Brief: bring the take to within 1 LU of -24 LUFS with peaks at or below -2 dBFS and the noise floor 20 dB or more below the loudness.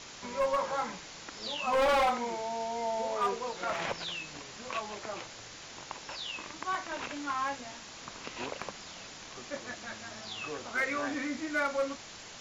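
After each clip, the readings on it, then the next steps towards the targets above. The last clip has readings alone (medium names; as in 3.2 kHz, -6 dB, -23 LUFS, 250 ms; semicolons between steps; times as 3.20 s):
clipped samples 1.3%; clipping level -23.5 dBFS; noise floor -48 dBFS; noise floor target -55 dBFS; loudness -34.5 LUFS; peak level -23.5 dBFS; loudness target -24.0 LUFS
-> clip repair -23.5 dBFS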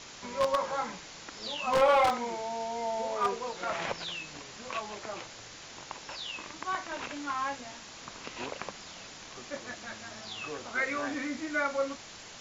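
clipped samples 0.0%; noise floor -48 dBFS; noise floor target -53 dBFS
-> noise reduction 6 dB, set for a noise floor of -48 dBFS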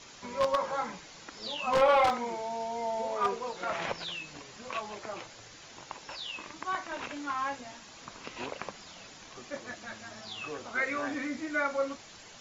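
noise floor -51 dBFS; noise floor target -53 dBFS
-> noise reduction 6 dB, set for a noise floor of -51 dBFS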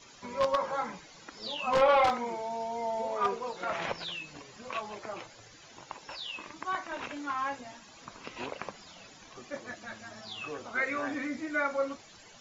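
noise floor -54 dBFS; loudness -33.0 LUFS; peak level -14.5 dBFS; loudness target -24.0 LUFS
-> trim +9 dB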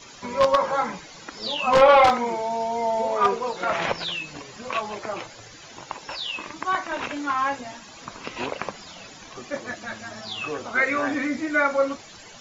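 loudness -24.0 LUFS; peak level -5.5 dBFS; noise floor -45 dBFS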